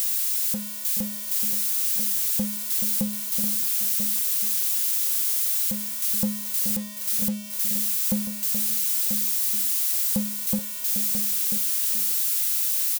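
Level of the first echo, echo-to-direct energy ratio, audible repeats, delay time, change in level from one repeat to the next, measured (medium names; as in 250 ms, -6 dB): -10.0 dB, -6.0 dB, 3, 427 ms, no regular repeats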